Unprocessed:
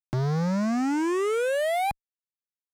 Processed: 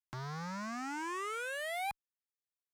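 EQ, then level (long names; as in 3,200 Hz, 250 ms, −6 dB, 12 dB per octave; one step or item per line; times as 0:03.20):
low shelf with overshoot 750 Hz −10 dB, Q 1.5
−7.5 dB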